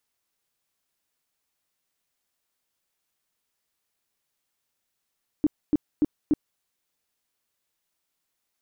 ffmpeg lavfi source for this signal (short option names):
-f lavfi -i "aevalsrc='0.158*sin(2*PI*300*mod(t,0.29))*lt(mod(t,0.29),8/300)':d=1.16:s=44100"